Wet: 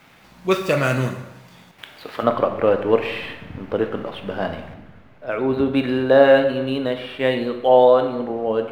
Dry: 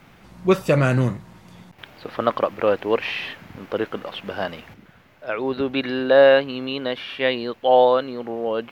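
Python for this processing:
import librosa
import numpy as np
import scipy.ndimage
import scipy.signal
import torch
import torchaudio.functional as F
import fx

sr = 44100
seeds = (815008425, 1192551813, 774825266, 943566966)

y = scipy.signal.medfilt(x, 5)
y = fx.tilt_eq(y, sr, slope=fx.steps((0.0, 2.0), (2.22, -2.0)))
y = fx.rev_plate(y, sr, seeds[0], rt60_s=0.95, hf_ratio=0.9, predelay_ms=0, drr_db=5.5)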